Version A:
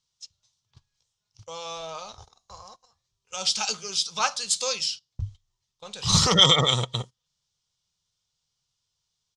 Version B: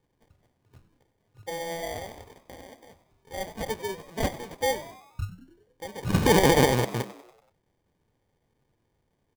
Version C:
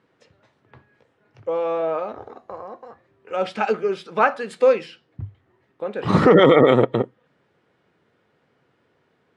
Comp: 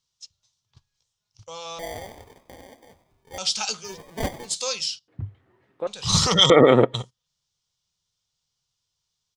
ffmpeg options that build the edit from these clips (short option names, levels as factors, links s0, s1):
-filter_complex "[1:a]asplit=2[s0][s1];[2:a]asplit=2[s2][s3];[0:a]asplit=5[s4][s5][s6][s7][s8];[s4]atrim=end=1.792[s9];[s0]atrim=start=1.788:end=3.382[s10];[s5]atrim=start=3.378:end=3.98[s11];[s1]atrim=start=3.82:end=4.58[s12];[s6]atrim=start=4.42:end=5.082[s13];[s2]atrim=start=5.078:end=5.872[s14];[s7]atrim=start=5.868:end=6.502[s15];[s3]atrim=start=6.498:end=6.942[s16];[s8]atrim=start=6.938[s17];[s9][s10]acrossfade=d=0.004:c1=hsin:c2=hsin[s18];[s18][s11]acrossfade=d=0.004:c1=hsin:c2=hsin[s19];[s19][s12]acrossfade=d=0.16:c1=tri:c2=tri[s20];[s20][s13]acrossfade=d=0.16:c1=tri:c2=tri[s21];[s21][s14]acrossfade=d=0.004:c1=hsin:c2=hsin[s22];[s22][s15]acrossfade=d=0.004:c1=hsin:c2=hsin[s23];[s23][s16]acrossfade=d=0.004:c1=hsin:c2=hsin[s24];[s24][s17]acrossfade=d=0.004:c1=hsin:c2=hsin"